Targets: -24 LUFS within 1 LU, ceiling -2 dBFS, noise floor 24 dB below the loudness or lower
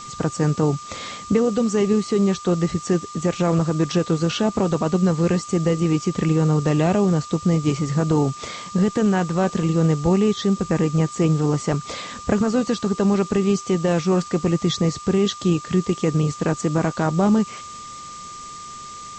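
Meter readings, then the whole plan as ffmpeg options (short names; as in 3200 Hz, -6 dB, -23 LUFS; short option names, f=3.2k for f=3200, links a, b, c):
steady tone 1200 Hz; tone level -35 dBFS; noise floor -37 dBFS; noise floor target -45 dBFS; loudness -21.0 LUFS; peak -7.0 dBFS; loudness target -24.0 LUFS
-> -af "bandreject=f=1.2k:w=30"
-af "afftdn=nr=8:nf=-37"
-af "volume=-3dB"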